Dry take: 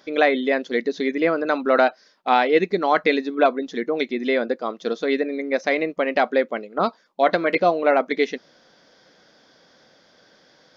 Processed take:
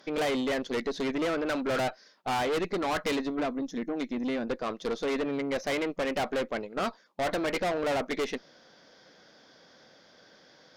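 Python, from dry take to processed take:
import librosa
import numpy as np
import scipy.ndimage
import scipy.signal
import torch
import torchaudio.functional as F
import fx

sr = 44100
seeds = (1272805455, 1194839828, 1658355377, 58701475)

y = fx.spec_box(x, sr, start_s=3.4, length_s=1.07, low_hz=340.0, high_hz=5100.0, gain_db=-9)
y = fx.tube_stage(y, sr, drive_db=26.0, bias=0.45)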